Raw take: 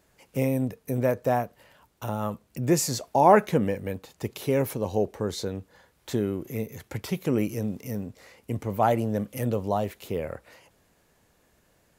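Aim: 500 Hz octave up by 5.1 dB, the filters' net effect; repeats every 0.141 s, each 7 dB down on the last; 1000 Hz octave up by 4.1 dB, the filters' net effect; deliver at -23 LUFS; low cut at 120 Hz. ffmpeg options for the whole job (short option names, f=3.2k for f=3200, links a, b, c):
-af "highpass=120,equalizer=f=500:t=o:g=5.5,equalizer=f=1k:t=o:g=3,aecho=1:1:141|282|423|564|705:0.447|0.201|0.0905|0.0407|0.0183"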